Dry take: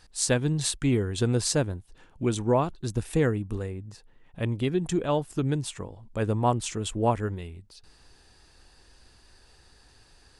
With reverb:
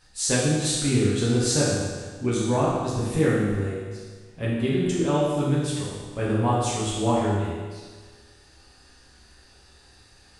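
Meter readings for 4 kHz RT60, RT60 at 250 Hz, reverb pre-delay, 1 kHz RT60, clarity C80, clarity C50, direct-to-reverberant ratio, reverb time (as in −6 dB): 1.4 s, 1.5 s, 6 ms, 1.5 s, 1.5 dB, −1.5 dB, −8.5 dB, 1.5 s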